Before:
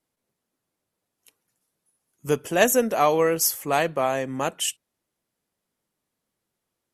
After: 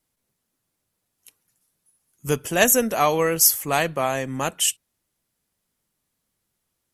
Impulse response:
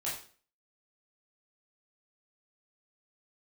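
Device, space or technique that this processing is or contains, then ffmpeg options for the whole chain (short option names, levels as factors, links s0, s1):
smiley-face EQ: -af "lowshelf=f=93:g=7.5,equalizer=f=460:t=o:w=2.3:g=-4.5,highshelf=f=6200:g=5,volume=1.41"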